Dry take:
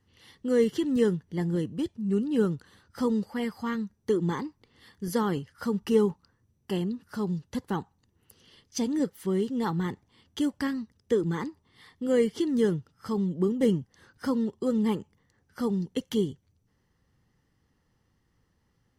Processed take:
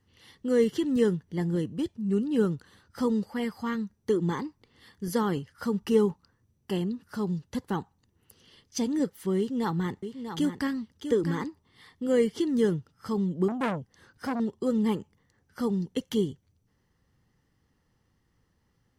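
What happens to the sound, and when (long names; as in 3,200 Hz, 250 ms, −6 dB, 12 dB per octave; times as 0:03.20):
0:09.38–0:11.45: single-tap delay 644 ms −8.5 dB
0:13.48–0:14.40: saturating transformer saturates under 1,400 Hz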